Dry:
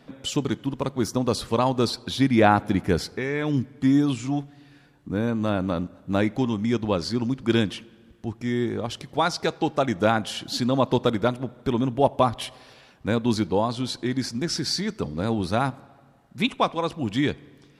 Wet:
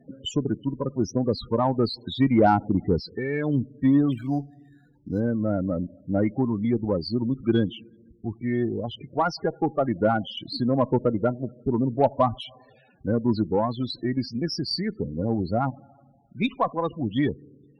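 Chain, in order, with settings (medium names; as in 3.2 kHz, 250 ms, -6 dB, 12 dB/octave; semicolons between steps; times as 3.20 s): loudest bins only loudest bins 16; Chebyshev shaper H 4 -31 dB, 6 -28 dB, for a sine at -7 dBFS; 4.12–5.20 s: decimation joined by straight lines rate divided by 8×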